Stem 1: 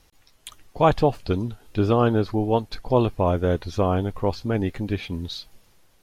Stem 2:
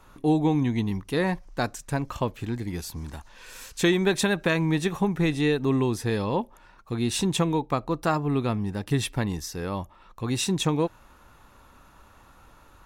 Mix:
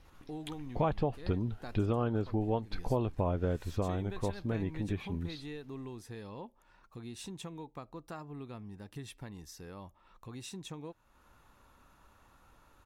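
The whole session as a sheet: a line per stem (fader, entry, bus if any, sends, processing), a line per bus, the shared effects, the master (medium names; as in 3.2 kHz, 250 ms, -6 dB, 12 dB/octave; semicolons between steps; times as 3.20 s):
3.49 s -2 dB -> 3.93 s -9 dB, 0.00 s, no send, tone controls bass +3 dB, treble -11 dB
-9.0 dB, 0.05 s, no send, compression 2:1, threshold -41 dBFS, peak gain reduction 13 dB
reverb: none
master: compression 4:1, threshold -29 dBFS, peak gain reduction 13 dB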